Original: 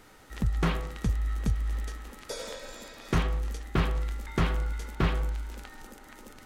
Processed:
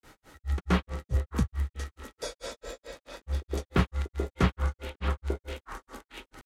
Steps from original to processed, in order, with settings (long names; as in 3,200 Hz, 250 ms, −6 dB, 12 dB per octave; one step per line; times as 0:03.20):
frequency shifter +16 Hz
echo through a band-pass that steps 372 ms, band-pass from 440 Hz, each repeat 1.4 octaves, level −2 dB
granular cloud 177 ms, grains 4.6 per second, pitch spread up and down by 0 semitones
level +3 dB